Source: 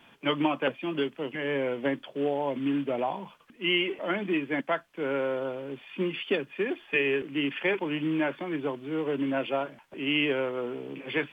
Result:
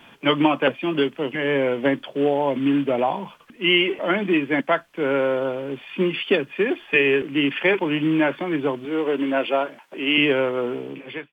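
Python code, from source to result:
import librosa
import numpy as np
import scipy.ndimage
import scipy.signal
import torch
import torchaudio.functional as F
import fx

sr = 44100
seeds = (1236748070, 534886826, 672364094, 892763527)

y = fx.fade_out_tail(x, sr, length_s=0.59)
y = fx.highpass(y, sr, hz=270.0, slope=12, at=(8.85, 10.18))
y = y * 10.0 ** (8.0 / 20.0)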